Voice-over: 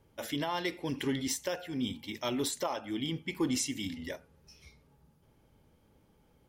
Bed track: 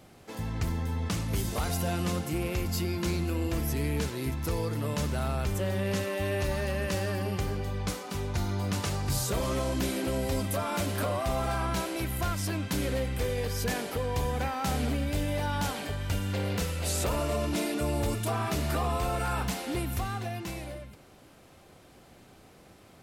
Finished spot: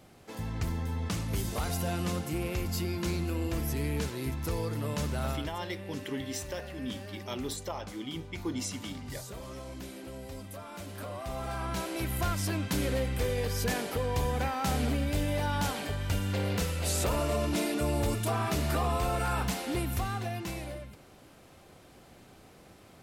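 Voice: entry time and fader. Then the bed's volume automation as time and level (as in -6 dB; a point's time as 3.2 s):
5.05 s, -4.0 dB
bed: 5.31 s -2 dB
5.52 s -13 dB
10.74 s -13 dB
12.14 s 0 dB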